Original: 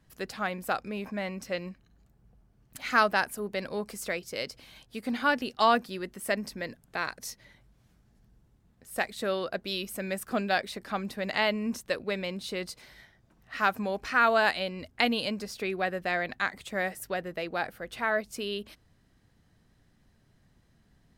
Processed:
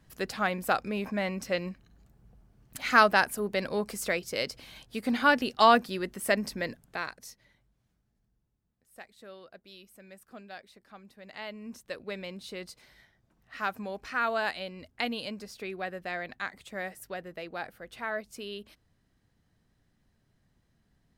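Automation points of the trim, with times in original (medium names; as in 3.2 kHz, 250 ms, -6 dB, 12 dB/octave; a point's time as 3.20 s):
6.70 s +3 dB
7.26 s -7.5 dB
8.97 s -18 dB
11.12 s -18 dB
12.10 s -6 dB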